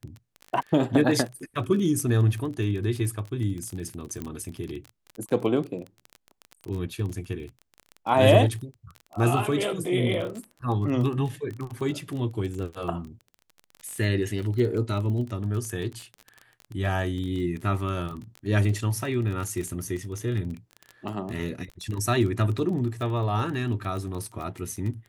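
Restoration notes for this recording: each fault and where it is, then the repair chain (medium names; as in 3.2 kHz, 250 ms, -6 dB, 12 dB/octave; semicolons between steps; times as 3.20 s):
crackle 26 per s -31 dBFS
4.22 s: pop -19 dBFS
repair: de-click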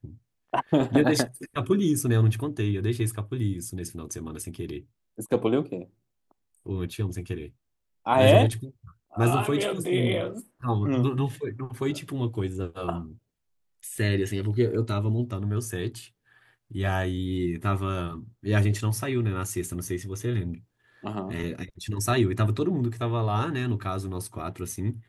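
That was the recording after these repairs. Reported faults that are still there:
nothing left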